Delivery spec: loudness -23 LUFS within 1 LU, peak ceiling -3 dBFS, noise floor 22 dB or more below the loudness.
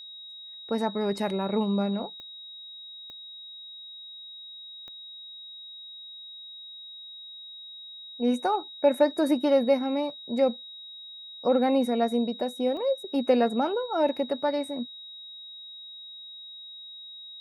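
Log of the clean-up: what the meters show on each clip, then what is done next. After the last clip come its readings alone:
clicks found 4; steady tone 3.8 kHz; tone level -41 dBFS; loudness -26.5 LUFS; peak level -9.5 dBFS; loudness target -23.0 LUFS
-> de-click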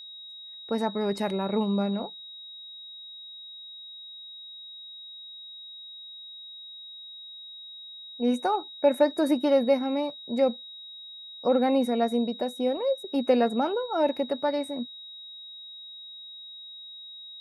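clicks found 0; steady tone 3.8 kHz; tone level -41 dBFS
-> band-stop 3.8 kHz, Q 30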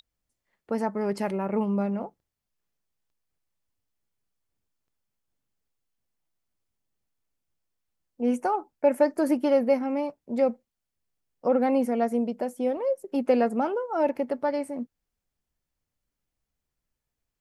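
steady tone not found; loudness -26.5 LUFS; peak level -9.5 dBFS; loudness target -23.0 LUFS
-> trim +3.5 dB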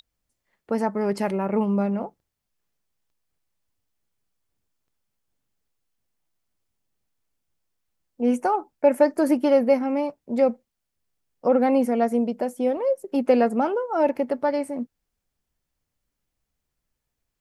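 loudness -23.0 LUFS; peak level -6.0 dBFS; noise floor -82 dBFS

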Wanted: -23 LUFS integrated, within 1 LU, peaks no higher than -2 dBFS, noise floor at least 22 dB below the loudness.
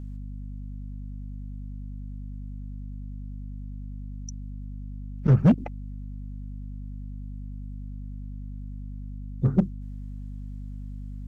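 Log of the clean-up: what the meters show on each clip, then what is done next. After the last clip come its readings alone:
clipped samples 0.4%; clipping level -12.0 dBFS; hum 50 Hz; highest harmonic 250 Hz; hum level -34 dBFS; loudness -32.0 LUFS; peak level -12.0 dBFS; loudness target -23.0 LUFS
-> clip repair -12 dBFS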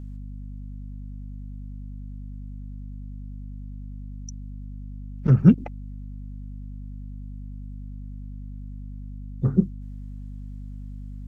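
clipped samples 0.0%; hum 50 Hz; highest harmonic 250 Hz; hum level -34 dBFS
-> hum notches 50/100/150/200/250 Hz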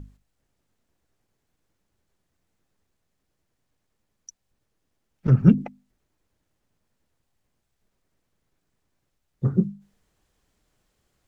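hum not found; loudness -22.0 LUFS; peak level -3.0 dBFS; loudness target -23.0 LUFS
-> trim -1 dB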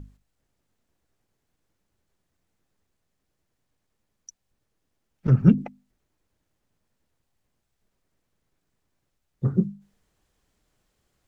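loudness -23.0 LUFS; peak level -4.0 dBFS; noise floor -78 dBFS

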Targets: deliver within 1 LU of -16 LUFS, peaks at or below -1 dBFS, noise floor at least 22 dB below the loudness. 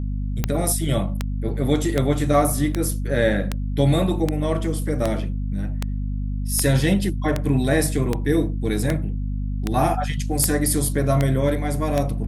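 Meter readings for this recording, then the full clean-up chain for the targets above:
clicks found 16; hum 50 Hz; highest harmonic 250 Hz; hum level -23 dBFS; loudness -22.5 LUFS; peak level -4.5 dBFS; loudness target -16.0 LUFS
-> de-click; de-hum 50 Hz, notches 5; trim +6.5 dB; peak limiter -1 dBFS

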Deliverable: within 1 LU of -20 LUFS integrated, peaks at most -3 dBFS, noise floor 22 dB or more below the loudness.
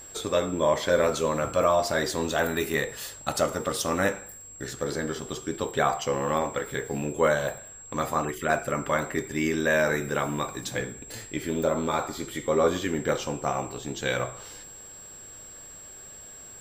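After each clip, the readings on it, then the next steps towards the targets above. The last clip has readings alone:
steady tone 7.6 kHz; tone level -43 dBFS; loudness -27.5 LUFS; peak level -8.5 dBFS; loudness target -20.0 LUFS
-> band-stop 7.6 kHz, Q 30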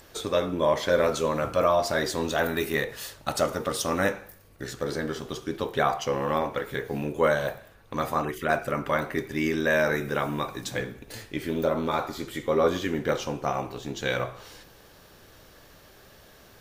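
steady tone not found; loudness -27.5 LUFS; peak level -8.0 dBFS; loudness target -20.0 LUFS
-> trim +7.5 dB; peak limiter -3 dBFS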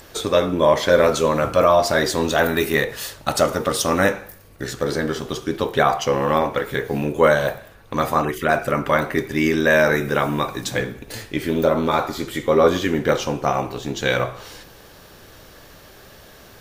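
loudness -20.0 LUFS; peak level -3.0 dBFS; noise floor -46 dBFS

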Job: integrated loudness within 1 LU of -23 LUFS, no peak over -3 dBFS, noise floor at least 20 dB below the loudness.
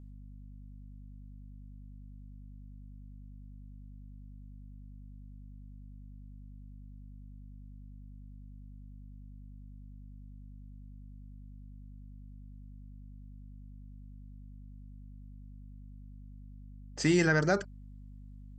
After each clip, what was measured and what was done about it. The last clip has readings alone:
hum 50 Hz; highest harmonic 250 Hz; hum level -46 dBFS; loudness -28.5 LUFS; peak level -13.5 dBFS; loudness target -23.0 LUFS
-> de-hum 50 Hz, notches 5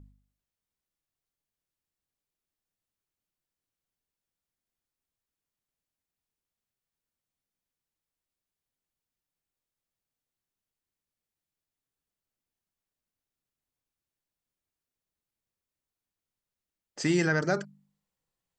hum not found; loudness -28.0 LUFS; peak level -13.5 dBFS; loudness target -23.0 LUFS
-> trim +5 dB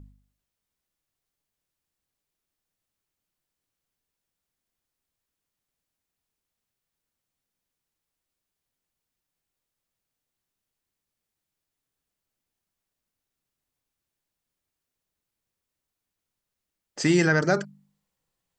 loudness -23.0 LUFS; peak level -8.5 dBFS; noise floor -86 dBFS

